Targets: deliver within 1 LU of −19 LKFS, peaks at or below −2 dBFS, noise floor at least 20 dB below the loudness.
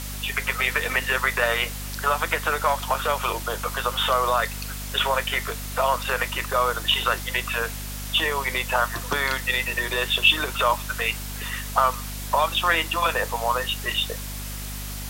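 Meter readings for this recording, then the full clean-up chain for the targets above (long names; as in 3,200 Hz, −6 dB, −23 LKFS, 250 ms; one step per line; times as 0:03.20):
mains hum 50 Hz; hum harmonics up to 250 Hz; level of the hum −32 dBFS; background noise floor −33 dBFS; target noise floor −44 dBFS; integrated loudness −23.5 LKFS; sample peak −5.0 dBFS; target loudness −19.0 LKFS
→ mains-hum notches 50/100/150/200/250 Hz
broadband denoise 11 dB, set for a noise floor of −33 dBFS
level +4.5 dB
brickwall limiter −2 dBFS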